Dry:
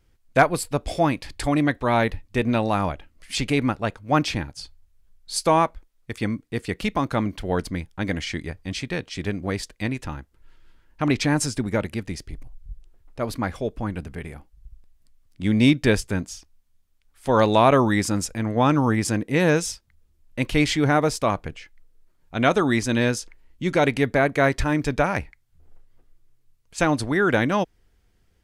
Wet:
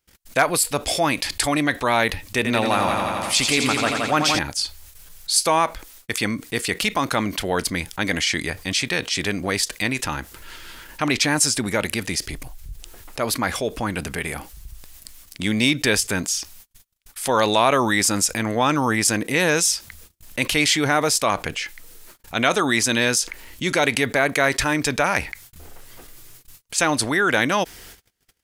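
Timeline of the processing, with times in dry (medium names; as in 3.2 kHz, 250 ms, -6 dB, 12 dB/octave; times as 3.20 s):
2.36–4.39 s: multi-head delay 86 ms, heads first and second, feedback 60%, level -9 dB
whole clip: gate -56 dBFS, range -48 dB; tilt EQ +3 dB/octave; level flattener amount 50%; trim -2 dB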